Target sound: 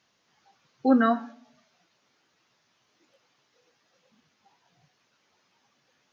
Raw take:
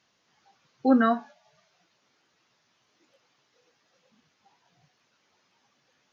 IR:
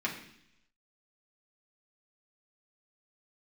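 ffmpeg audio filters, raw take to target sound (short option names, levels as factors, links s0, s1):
-filter_complex "[0:a]asplit=2[s0][s1];[1:a]atrim=start_sample=2205,asetrate=52920,aresample=44100,adelay=123[s2];[s1][s2]afir=irnorm=-1:irlink=0,volume=0.0501[s3];[s0][s3]amix=inputs=2:normalize=0"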